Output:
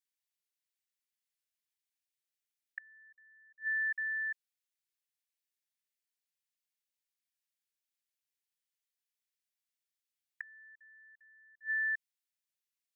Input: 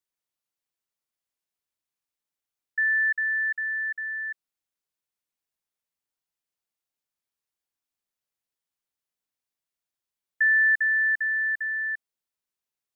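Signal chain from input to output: steep high-pass 1.6 kHz; inverted gate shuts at -24 dBFS, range -33 dB; trim -2.5 dB

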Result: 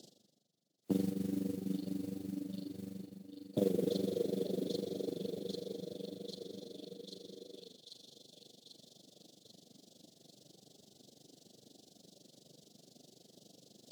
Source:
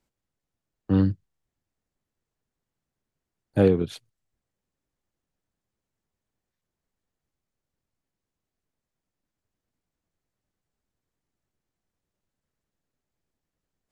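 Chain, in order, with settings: inverse Chebyshev band-stop 1–2.3 kHz, stop band 40 dB; peaking EQ 4.4 kHz +7.5 dB 1.7 oct; on a send: feedback echo behind a high-pass 792 ms, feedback 46%, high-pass 3 kHz, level -7 dB; on the sum: plate-style reverb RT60 4.5 s, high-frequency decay 0.6×, DRR 2 dB; AM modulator 24 Hz, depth 80%; reverse; upward compressor, threshold -44 dBFS; reverse; treble shelf 7.8 kHz -12 dB; modulation noise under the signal 24 dB; compression 3:1, threshold -42 dBFS, peak gain reduction 20 dB; high-pass 160 Hz 24 dB/octave; trim +8 dB; WMA 128 kbps 44.1 kHz

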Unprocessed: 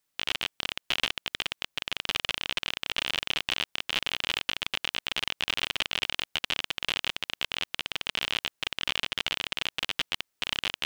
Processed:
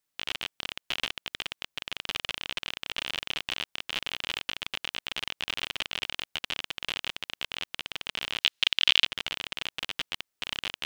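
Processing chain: 8.41–9.05 s: peaking EQ 3.5 kHz +13.5 dB 1.8 oct; trim -3.5 dB

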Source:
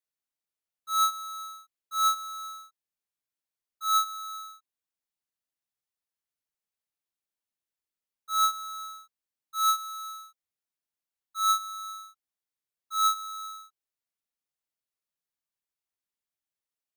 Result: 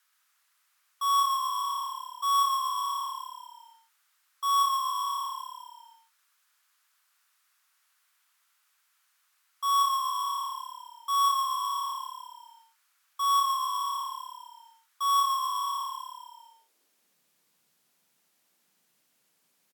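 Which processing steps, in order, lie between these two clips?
high-pass sweep 1.5 kHz -> 200 Hz, 13.72–14.74 s; tape speed -14%; on a send: frequency-shifting echo 125 ms, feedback 47%, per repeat -35 Hz, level -6 dB; on the sum: three bands compressed up and down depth 70%; trim -2 dB

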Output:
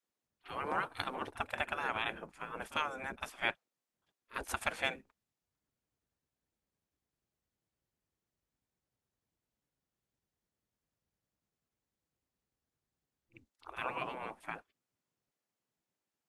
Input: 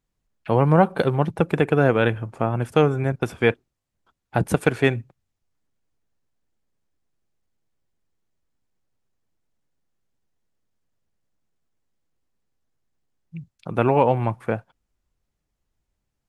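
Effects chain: pre-echo 47 ms -18 dB; spectral gate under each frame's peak -15 dB weak; trim -6 dB

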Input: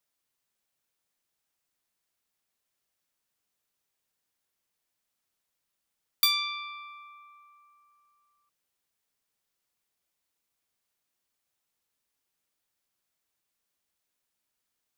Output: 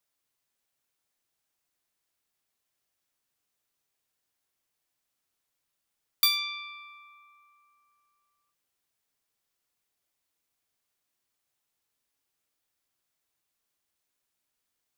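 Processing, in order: gated-style reverb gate 130 ms falling, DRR 11 dB

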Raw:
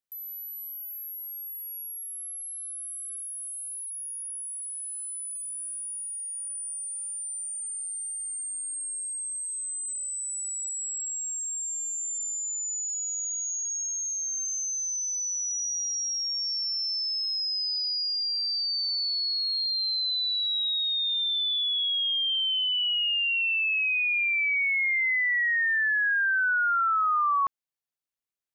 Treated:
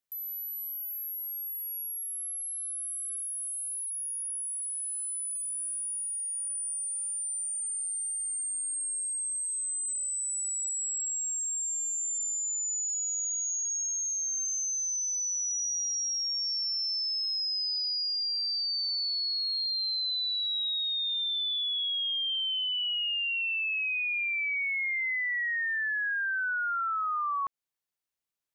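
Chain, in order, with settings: compression, threshold -31 dBFS, peak gain reduction 8 dB; trim +1.5 dB

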